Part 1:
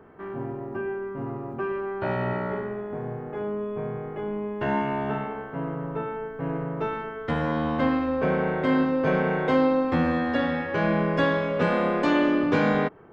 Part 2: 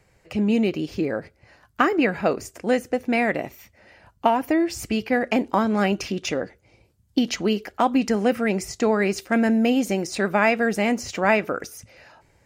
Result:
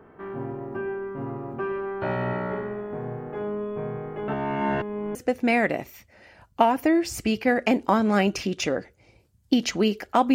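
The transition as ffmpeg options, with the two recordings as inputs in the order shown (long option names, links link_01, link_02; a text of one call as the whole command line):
ffmpeg -i cue0.wav -i cue1.wav -filter_complex "[0:a]apad=whole_dur=10.34,atrim=end=10.34,asplit=2[link_01][link_02];[link_01]atrim=end=4.282[link_03];[link_02]atrim=start=4.278:end=5.152,asetpts=PTS-STARTPTS,areverse[link_04];[1:a]atrim=start=2.798:end=7.99[link_05];[link_03][link_04]acrossfade=duration=0.004:curve1=hsin:curve2=hsin[link_06];[link_06][link_05]acrossfade=duration=0.004:curve1=hsin:curve2=hsin" out.wav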